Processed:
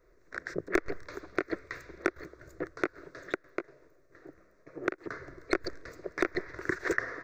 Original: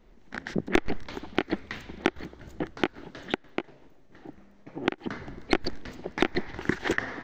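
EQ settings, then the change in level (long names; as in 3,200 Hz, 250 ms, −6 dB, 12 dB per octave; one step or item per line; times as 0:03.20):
low-shelf EQ 91 Hz −11 dB
phaser with its sweep stopped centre 830 Hz, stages 6
0.0 dB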